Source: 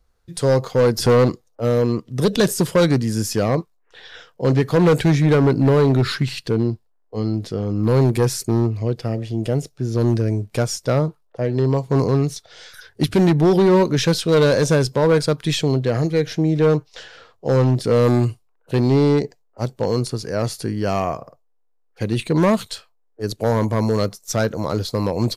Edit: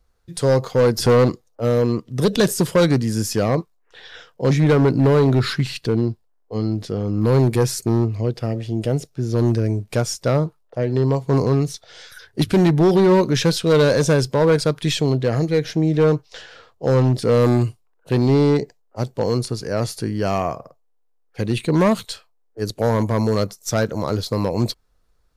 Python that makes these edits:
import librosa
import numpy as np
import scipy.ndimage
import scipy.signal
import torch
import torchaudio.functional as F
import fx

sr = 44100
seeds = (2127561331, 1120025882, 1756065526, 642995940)

y = fx.edit(x, sr, fx.cut(start_s=4.51, length_s=0.62), tone=tone)